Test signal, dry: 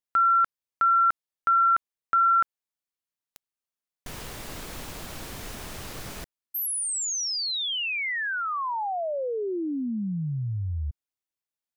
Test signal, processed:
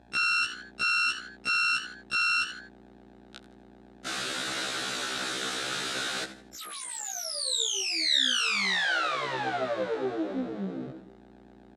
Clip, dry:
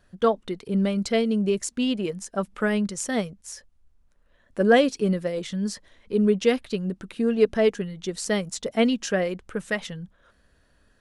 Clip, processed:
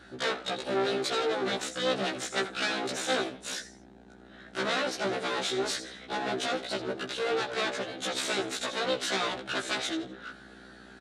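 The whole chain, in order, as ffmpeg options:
-filter_complex "[0:a]equalizer=f=1.4k:w=5.2:g=10.5,acrossover=split=1300[a][b];[b]acompressor=threshold=-34dB:ratio=5:attack=24:release=104[c];[a][c]amix=inputs=2:normalize=0,alimiter=limit=-18dB:level=0:latency=1:release=386,acontrast=87,asoftclip=type=tanh:threshold=-20dB,aeval=exprs='val(0)+0.0141*(sin(2*PI*60*n/s)+sin(2*PI*2*60*n/s)/2+sin(2*PI*3*60*n/s)/3+sin(2*PI*4*60*n/s)/4+sin(2*PI*5*60*n/s)/5)':c=same,asplit=4[d][e][f][g];[e]adelay=82,afreqshift=86,volume=-15dB[h];[f]adelay=164,afreqshift=172,volume=-24.9dB[i];[g]adelay=246,afreqshift=258,volume=-34.8dB[j];[d][h][i][j]amix=inputs=4:normalize=0,aeval=exprs='abs(val(0))':c=same,highpass=250,equalizer=f=980:t=q:w=4:g=-8,equalizer=f=1.5k:t=q:w=4:g=4,equalizer=f=3.8k:t=q:w=4:g=9,lowpass=f=9k:w=0.5412,lowpass=f=9k:w=1.3066,afftfilt=real='re*1.73*eq(mod(b,3),0)':imag='im*1.73*eq(mod(b,3),0)':win_size=2048:overlap=0.75,volume=4.5dB"

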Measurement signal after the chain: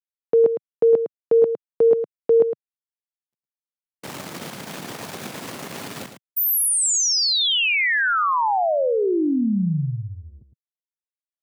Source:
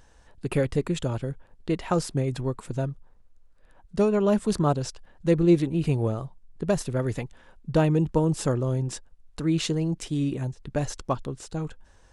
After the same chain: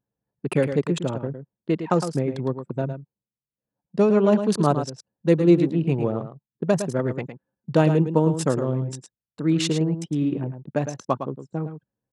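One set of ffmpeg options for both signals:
-af "anlmdn=10,highpass=f=140:w=0.5412,highpass=f=140:w=1.3066,aecho=1:1:109:0.355,volume=3.5dB"

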